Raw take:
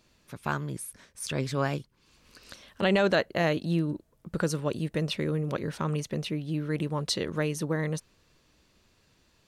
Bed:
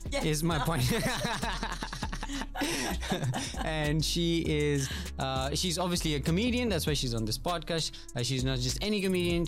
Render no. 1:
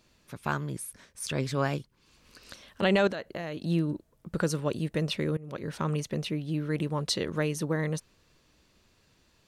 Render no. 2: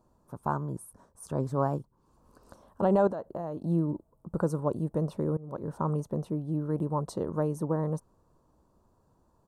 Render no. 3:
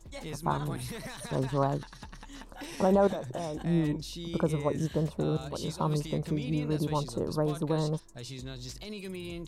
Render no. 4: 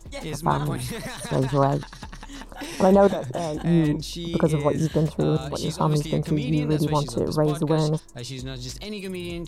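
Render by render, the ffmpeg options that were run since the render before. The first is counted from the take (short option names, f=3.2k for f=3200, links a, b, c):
-filter_complex "[0:a]asettb=1/sr,asplit=3[a][b][c];[a]atrim=end=3.074[d];[b]atrim=start=3.07:end=3.62,asetpts=PTS-STARTPTS,afade=t=in:d=0.004:c=qsin,afade=t=out:st=0.546:d=0.004:c=qsin,acompressor=threshold=-32dB:ratio=6:attack=3.2:release=140:knee=1:detection=peak[e];[c]atrim=start=3.616[f];[d][e]acrossfade=d=0.004:c1=hsin:c2=qsin[g];[g][f]acrossfade=d=0.004:c1=qsin:c2=hsin,asplit=2[h][i];[h]atrim=end=5.37,asetpts=PTS-STARTPTS,afade=t=out:st=5.366:d=0.004:c=hsin:silence=0.0841395[j];[i]atrim=start=5.37,asetpts=PTS-STARTPTS,afade=t=in:d=0.42:silence=0.0841395[k];[j][k]concat=n=2:v=0:a=1"
-af "firequalizer=gain_entry='entry(440,0);entry(960,5);entry(2100,-28);entry(8300,-9)':delay=0.05:min_phase=1"
-filter_complex "[1:a]volume=-11dB[a];[0:a][a]amix=inputs=2:normalize=0"
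-af "volume=7.5dB"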